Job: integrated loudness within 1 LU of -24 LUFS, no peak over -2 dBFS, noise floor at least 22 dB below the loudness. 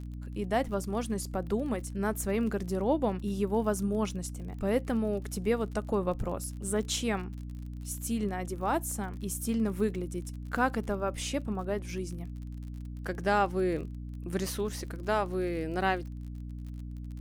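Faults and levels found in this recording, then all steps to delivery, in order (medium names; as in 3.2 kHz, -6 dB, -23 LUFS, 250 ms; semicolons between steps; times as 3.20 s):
tick rate 42 per s; hum 60 Hz; highest harmonic 300 Hz; hum level -37 dBFS; loudness -32.5 LUFS; peak level -13.0 dBFS; loudness target -24.0 LUFS
-> de-click; de-hum 60 Hz, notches 5; trim +8.5 dB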